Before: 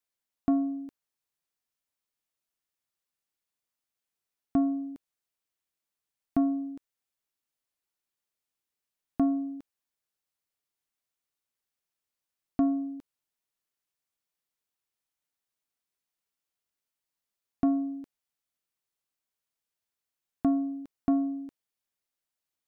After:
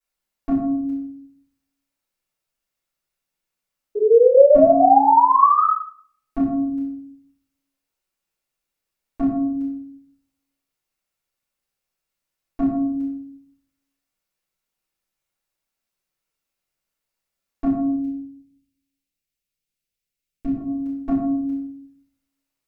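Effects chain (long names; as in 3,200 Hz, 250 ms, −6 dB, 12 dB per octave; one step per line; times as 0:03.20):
0:03.95–0:05.64: sound drawn into the spectrogram rise 410–1,300 Hz −20 dBFS
0:17.88–0:20.57: drawn EQ curve 130 Hz 0 dB, 490 Hz −6 dB, 1,000 Hz −17 dB, 2,400 Hz −2 dB
rectangular room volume 110 cubic metres, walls mixed, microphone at 4.5 metres
level −8 dB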